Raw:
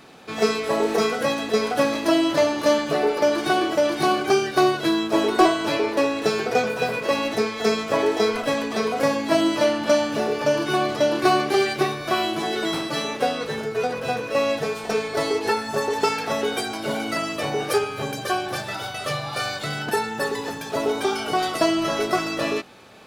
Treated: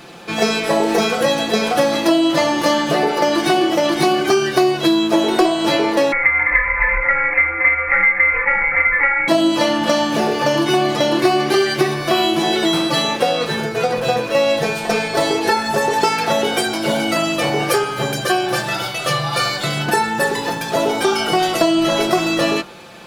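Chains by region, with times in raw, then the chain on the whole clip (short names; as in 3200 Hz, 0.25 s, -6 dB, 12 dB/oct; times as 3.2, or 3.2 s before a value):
6.12–9.28 comb 2.5 ms, depth 34% + inverted band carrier 2500 Hz + Doppler distortion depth 0.11 ms
whole clip: comb 5.8 ms, depth 56%; de-hum 49.83 Hz, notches 38; compressor 4:1, threshold -20 dBFS; gain +8 dB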